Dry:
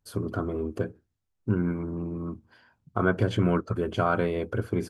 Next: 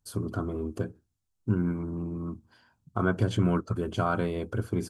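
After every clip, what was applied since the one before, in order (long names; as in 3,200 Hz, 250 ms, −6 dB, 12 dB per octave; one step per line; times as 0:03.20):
graphic EQ with 10 bands 500 Hz −5 dB, 2,000 Hz −6 dB, 8,000 Hz +5 dB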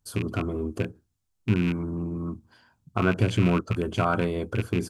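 loose part that buzzes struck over −29 dBFS, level −26 dBFS
level +3 dB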